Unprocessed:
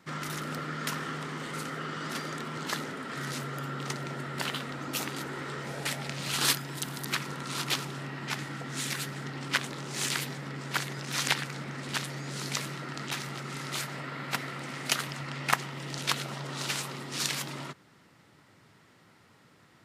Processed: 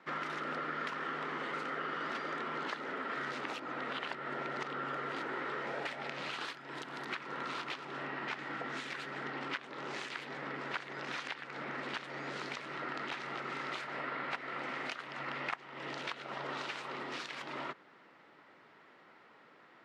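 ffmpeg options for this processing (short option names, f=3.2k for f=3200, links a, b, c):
-filter_complex "[0:a]asplit=3[a][b][c];[a]atrim=end=3.412[d];[b]atrim=start=3.408:end=5.122,asetpts=PTS-STARTPTS,areverse[e];[c]atrim=start=5.118[f];[d][e]acrossfade=d=0.004:c1=hsin:c2=hsin[g];[g][f]acrossfade=d=0.004:c1=hsin:c2=hsin,highpass=370,acompressor=threshold=-36dB:ratio=12,lowpass=2.5k,volume=3dB"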